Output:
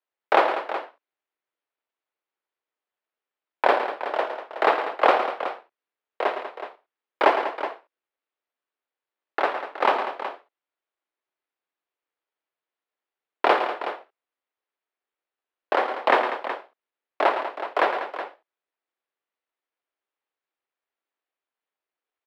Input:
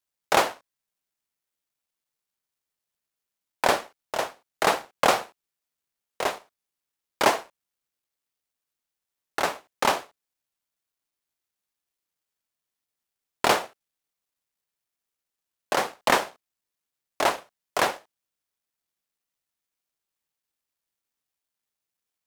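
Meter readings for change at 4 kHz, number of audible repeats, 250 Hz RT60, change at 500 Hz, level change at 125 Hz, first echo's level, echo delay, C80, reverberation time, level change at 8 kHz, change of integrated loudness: -4.5 dB, 3, no reverb, +4.0 dB, under -15 dB, -10.0 dB, 110 ms, no reverb, no reverb, under -20 dB, +1.5 dB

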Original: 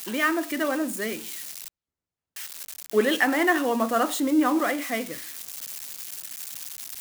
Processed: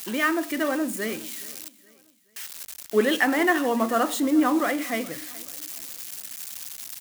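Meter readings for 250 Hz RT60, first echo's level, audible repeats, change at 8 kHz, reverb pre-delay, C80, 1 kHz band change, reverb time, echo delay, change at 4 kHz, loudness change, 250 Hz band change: no reverb, -21.0 dB, 2, 0.0 dB, no reverb, no reverb, 0.0 dB, no reverb, 422 ms, 0.0 dB, +0.5 dB, +1.0 dB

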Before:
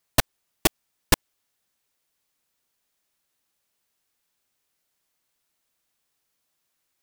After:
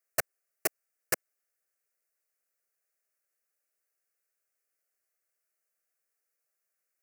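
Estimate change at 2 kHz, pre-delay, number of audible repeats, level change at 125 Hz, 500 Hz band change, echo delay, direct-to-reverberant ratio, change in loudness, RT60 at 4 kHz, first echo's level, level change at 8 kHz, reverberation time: -7.0 dB, no reverb, no echo, -21.0 dB, -7.0 dB, no echo, no reverb, -8.5 dB, no reverb, no echo, -7.5 dB, no reverb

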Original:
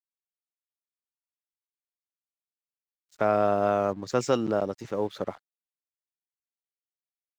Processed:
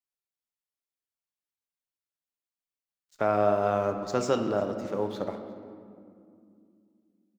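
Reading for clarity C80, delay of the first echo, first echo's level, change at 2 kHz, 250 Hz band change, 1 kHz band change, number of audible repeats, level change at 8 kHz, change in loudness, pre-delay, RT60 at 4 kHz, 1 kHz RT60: 8.5 dB, 354 ms, -23.5 dB, -1.0 dB, -1.0 dB, -1.0 dB, 1, -1.5 dB, -1.0 dB, 7 ms, 1.3 s, 2.2 s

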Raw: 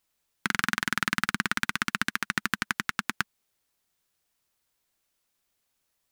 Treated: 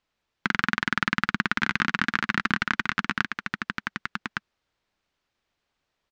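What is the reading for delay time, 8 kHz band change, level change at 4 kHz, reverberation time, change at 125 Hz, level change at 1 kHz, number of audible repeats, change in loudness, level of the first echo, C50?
1162 ms, -8.5 dB, +1.0 dB, no reverb, +5.0 dB, +4.0 dB, 1, +2.0 dB, -5.0 dB, no reverb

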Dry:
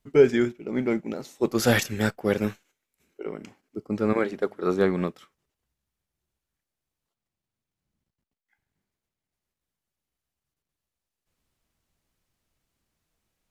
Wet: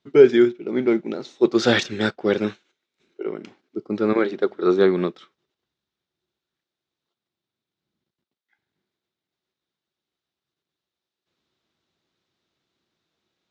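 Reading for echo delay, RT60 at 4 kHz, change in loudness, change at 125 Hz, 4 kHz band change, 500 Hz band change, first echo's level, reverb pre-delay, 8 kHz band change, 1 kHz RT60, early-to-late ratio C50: no echo, no reverb, +5.0 dB, -2.0 dB, +6.0 dB, +5.5 dB, no echo, no reverb, no reading, no reverb, no reverb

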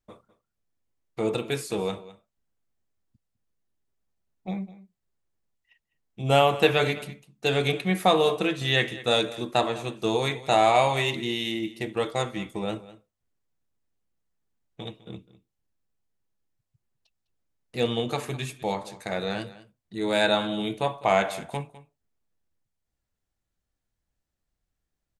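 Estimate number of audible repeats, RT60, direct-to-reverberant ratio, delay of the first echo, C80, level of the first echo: 1, no reverb, no reverb, 204 ms, no reverb, -17.5 dB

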